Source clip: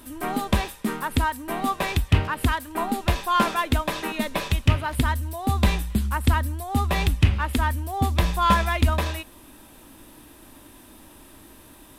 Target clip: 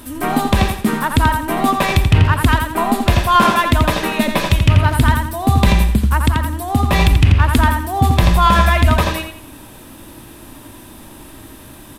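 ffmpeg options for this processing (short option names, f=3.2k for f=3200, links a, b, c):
-filter_complex "[0:a]equalizer=f=120:w=1.7:g=6.5,asettb=1/sr,asplit=3[a][b][c];[a]atrim=end=5.814[d];[b]atrim=start=5.81:end=6.93,asetpts=PTS-STARTPTS,afade=t=in:d=0.004:c=qsin,afade=t=out:st=1.116:d=0.004:c=qsin,acompressor=threshold=-19dB:ratio=6[e];[c]atrim=start=6.926[f];[d][e]acrossfade=d=0.004:c1=hsin:c2=qsin[g];[g][f]acrossfade=d=0.004:c1=qsin:c2=hsin,asplit=2[h][i];[i]adelay=85,lowpass=f=4.7k:p=1,volume=-5dB,asplit=2[j][k];[k]adelay=85,lowpass=f=4.7k:p=1,volume=0.35,asplit=2[l][m];[m]adelay=85,lowpass=f=4.7k:p=1,volume=0.35,asplit=2[n][o];[o]adelay=85,lowpass=f=4.7k:p=1,volume=0.35[p];[h][j][l][n][p]amix=inputs=5:normalize=0,alimiter=level_in=9.5dB:limit=-1dB:release=50:level=0:latency=1,volume=-1dB"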